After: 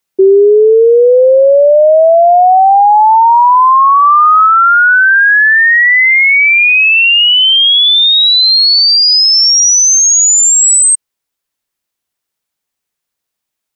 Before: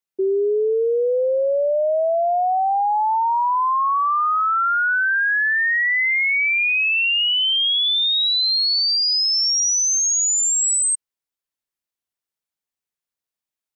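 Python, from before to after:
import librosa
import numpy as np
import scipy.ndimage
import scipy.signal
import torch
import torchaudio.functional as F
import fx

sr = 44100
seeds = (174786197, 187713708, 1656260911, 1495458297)

p1 = fx.tilt_eq(x, sr, slope=3.0, at=(4.01, 4.46), fade=0.02)
p2 = fx.rider(p1, sr, range_db=10, speed_s=0.5)
p3 = p1 + (p2 * 10.0 ** (-0.5 / 20.0))
y = p3 * 10.0 ** (6.5 / 20.0)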